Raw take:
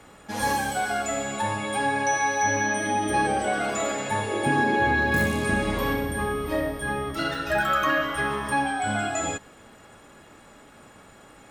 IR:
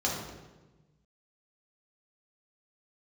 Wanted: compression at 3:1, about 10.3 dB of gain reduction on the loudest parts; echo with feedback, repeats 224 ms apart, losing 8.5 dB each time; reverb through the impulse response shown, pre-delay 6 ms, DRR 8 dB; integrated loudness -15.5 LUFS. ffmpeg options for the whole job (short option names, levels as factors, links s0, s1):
-filter_complex "[0:a]acompressor=threshold=0.0224:ratio=3,aecho=1:1:224|448|672|896:0.376|0.143|0.0543|0.0206,asplit=2[s0][s1];[1:a]atrim=start_sample=2205,adelay=6[s2];[s1][s2]afir=irnorm=-1:irlink=0,volume=0.141[s3];[s0][s3]amix=inputs=2:normalize=0,volume=6.31"